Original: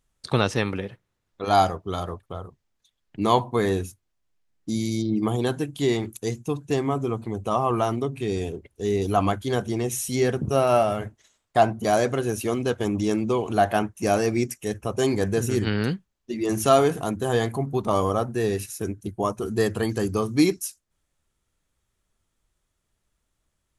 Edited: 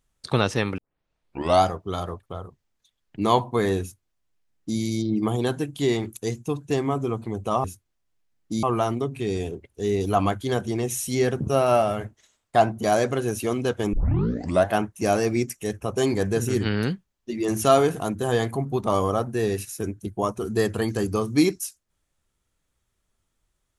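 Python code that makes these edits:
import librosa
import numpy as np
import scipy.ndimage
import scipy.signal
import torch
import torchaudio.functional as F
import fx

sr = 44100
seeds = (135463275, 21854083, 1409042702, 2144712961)

y = fx.edit(x, sr, fx.tape_start(start_s=0.78, length_s=0.85),
    fx.duplicate(start_s=3.81, length_s=0.99, to_s=7.64),
    fx.tape_start(start_s=12.94, length_s=0.73), tone=tone)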